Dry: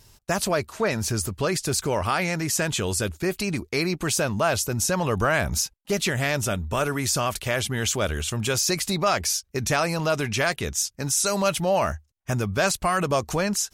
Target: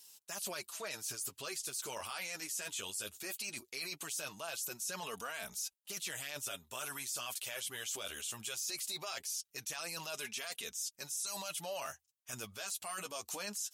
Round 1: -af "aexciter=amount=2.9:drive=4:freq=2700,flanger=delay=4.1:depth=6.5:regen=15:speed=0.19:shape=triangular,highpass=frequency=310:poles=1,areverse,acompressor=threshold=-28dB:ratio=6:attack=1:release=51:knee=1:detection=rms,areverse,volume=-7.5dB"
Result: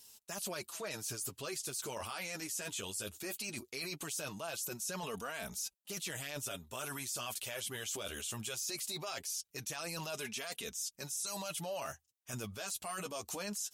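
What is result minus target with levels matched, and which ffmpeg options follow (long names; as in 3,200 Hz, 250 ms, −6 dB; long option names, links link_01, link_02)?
250 Hz band +6.5 dB
-af "aexciter=amount=2.9:drive=4:freq=2700,flanger=delay=4.1:depth=6.5:regen=15:speed=0.19:shape=triangular,highpass=frequency=1000:poles=1,areverse,acompressor=threshold=-28dB:ratio=6:attack=1:release=51:knee=1:detection=rms,areverse,volume=-7.5dB"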